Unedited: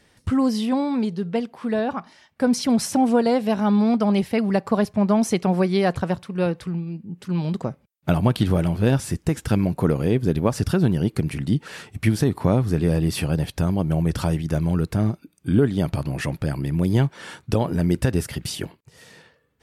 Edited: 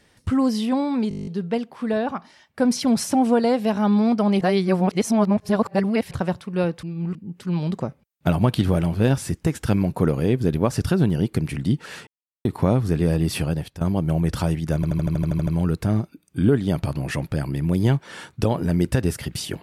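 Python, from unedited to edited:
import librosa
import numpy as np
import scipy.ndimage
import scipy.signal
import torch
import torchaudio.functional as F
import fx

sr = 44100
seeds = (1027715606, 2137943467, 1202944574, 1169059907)

y = fx.edit(x, sr, fx.stutter(start_s=1.09, slice_s=0.02, count=10),
    fx.reverse_span(start_s=4.23, length_s=1.7),
    fx.reverse_span(start_s=6.65, length_s=0.32),
    fx.silence(start_s=11.89, length_s=0.38),
    fx.fade_out_to(start_s=13.26, length_s=0.37, floor_db=-15.5),
    fx.stutter(start_s=14.57, slice_s=0.08, count=10), tone=tone)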